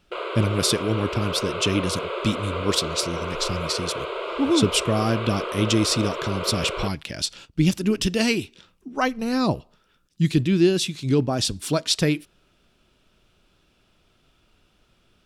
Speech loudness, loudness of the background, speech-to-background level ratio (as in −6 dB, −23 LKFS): −24.0 LKFS, −30.0 LKFS, 6.0 dB